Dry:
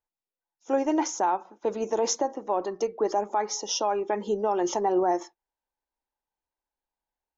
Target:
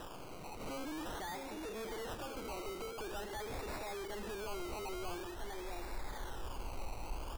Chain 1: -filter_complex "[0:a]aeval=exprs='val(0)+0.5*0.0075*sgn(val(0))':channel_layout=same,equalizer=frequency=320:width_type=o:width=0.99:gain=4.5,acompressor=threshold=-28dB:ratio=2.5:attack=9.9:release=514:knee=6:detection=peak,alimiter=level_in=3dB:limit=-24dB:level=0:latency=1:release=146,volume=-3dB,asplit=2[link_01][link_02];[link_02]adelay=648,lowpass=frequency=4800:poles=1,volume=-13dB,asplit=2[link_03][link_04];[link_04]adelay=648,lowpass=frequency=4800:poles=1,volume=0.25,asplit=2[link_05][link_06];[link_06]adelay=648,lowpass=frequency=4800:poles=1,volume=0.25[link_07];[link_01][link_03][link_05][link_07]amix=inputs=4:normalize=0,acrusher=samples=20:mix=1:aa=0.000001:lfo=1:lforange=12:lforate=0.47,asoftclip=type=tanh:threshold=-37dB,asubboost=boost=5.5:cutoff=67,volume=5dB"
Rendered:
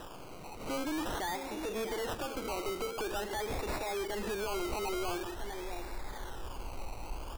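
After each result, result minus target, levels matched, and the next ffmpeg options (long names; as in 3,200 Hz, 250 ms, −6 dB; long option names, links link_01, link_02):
downward compressor: peak gain reduction −4 dB; soft clipping: distortion −6 dB
-filter_complex "[0:a]aeval=exprs='val(0)+0.5*0.0075*sgn(val(0))':channel_layout=same,equalizer=frequency=320:width_type=o:width=0.99:gain=4.5,acompressor=threshold=-35dB:ratio=2.5:attack=9.9:release=514:knee=6:detection=peak,alimiter=level_in=3dB:limit=-24dB:level=0:latency=1:release=146,volume=-3dB,asplit=2[link_01][link_02];[link_02]adelay=648,lowpass=frequency=4800:poles=1,volume=-13dB,asplit=2[link_03][link_04];[link_04]adelay=648,lowpass=frequency=4800:poles=1,volume=0.25,asplit=2[link_05][link_06];[link_06]adelay=648,lowpass=frequency=4800:poles=1,volume=0.25[link_07];[link_01][link_03][link_05][link_07]amix=inputs=4:normalize=0,acrusher=samples=20:mix=1:aa=0.000001:lfo=1:lforange=12:lforate=0.47,asoftclip=type=tanh:threshold=-37dB,asubboost=boost=5.5:cutoff=67,volume=5dB"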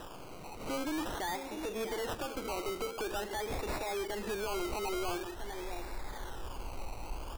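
soft clipping: distortion −6 dB
-filter_complex "[0:a]aeval=exprs='val(0)+0.5*0.0075*sgn(val(0))':channel_layout=same,equalizer=frequency=320:width_type=o:width=0.99:gain=4.5,acompressor=threshold=-35dB:ratio=2.5:attack=9.9:release=514:knee=6:detection=peak,alimiter=level_in=3dB:limit=-24dB:level=0:latency=1:release=146,volume=-3dB,asplit=2[link_01][link_02];[link_02]adelay=648,lowpass=frequency=4800:poles=1,volume=-13dB,asplit=2[link_03][link_04];[link_04]adelay=648,lowpass=frequency=4800:poles=1,volume=0.25,asplit=2[link_05][link_06];[link_06]adelay=648,lowpass=frequency=4800:poles=1,volume=0.25[link_07];[link_01][link_03][link_05][link_07]amix=inputs=4:normalize=0,acrusher=samples=20:mix=1:aa=0.000001:lfo=1:lforange=12:lforate=0.47,asoftclip=type=tanh:threshold=-46dB,asubboost=boost=5.5:cutoff=67,volume=5dB"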